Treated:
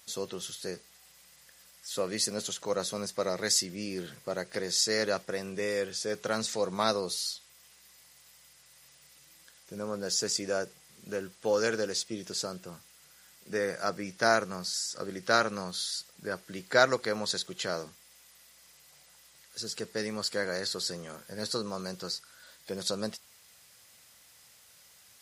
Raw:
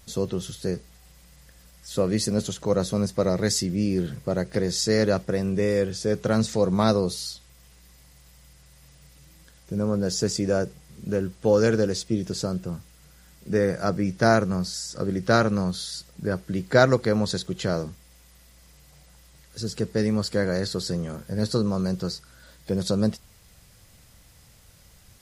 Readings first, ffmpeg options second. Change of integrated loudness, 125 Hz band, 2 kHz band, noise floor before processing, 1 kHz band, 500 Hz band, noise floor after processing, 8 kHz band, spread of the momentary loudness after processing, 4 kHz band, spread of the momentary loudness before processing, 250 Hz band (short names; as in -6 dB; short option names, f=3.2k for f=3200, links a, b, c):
-6.5 dB, -18.0 dB, -1.5 dB, -54 dBFS, -3.5 dB, -7.5 dB, -59 dBFS, 0.0 dB, 13 LU, 0.0 dB, 12 LU, -14.0 dB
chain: -af "highpass=f=1.1k:p=1"